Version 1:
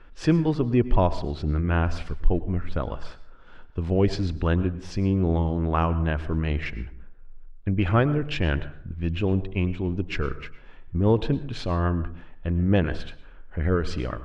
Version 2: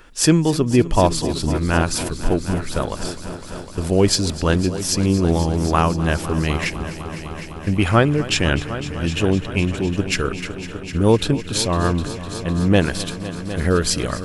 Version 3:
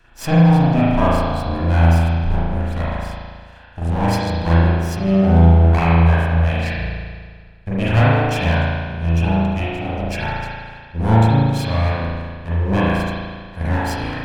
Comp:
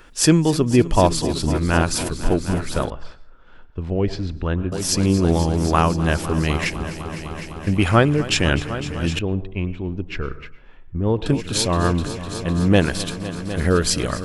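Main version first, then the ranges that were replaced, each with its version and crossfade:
2
2.9–4.72 from 1
9.19–11.26 from 1
not used: 3

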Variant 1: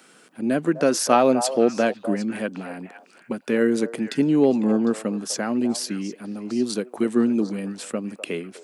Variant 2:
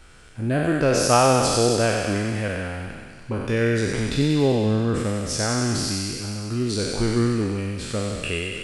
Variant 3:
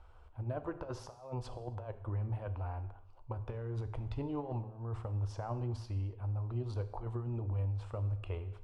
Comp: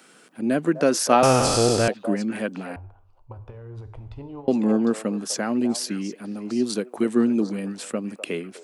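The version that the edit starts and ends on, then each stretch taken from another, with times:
1
1.23–1.88 from 2
2.76–4.48 from 3

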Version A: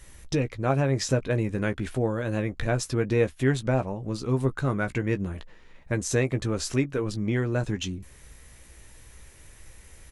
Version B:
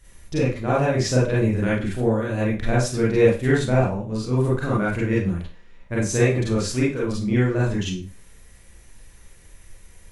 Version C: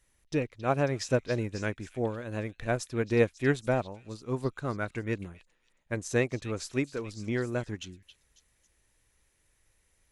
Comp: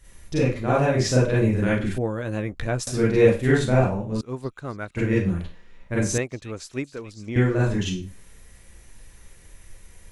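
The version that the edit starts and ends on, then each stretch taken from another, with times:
B
1.98–2.87 from A
4.21–4.97 from C
6.18–7.36 from C

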